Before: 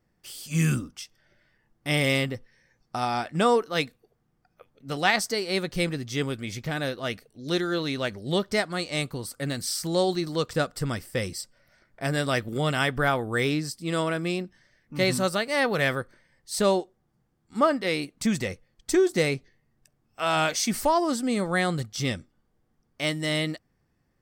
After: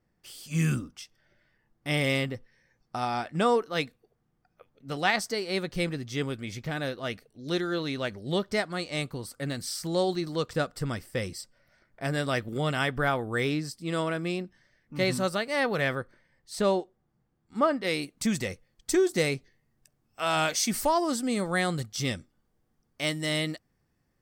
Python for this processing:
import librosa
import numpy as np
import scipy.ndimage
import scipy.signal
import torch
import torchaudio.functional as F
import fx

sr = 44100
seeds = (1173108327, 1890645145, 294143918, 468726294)

y = fx.high_shelf(x, sr, hz=5000.0, db=fx.steps((0.0, -4.0), (15.8, -8.5), (17.83, 4.0)))
y = y * librosa.db_to_amplitude(-2.5)